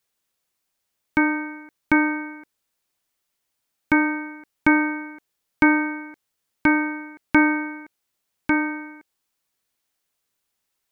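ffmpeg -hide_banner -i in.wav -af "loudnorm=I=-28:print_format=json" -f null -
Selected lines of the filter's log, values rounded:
"input_i" : "-22.2",
"input_tp" : "-3.8",
"input_lra" : "8.5",
"input_thresh" : "-33.6",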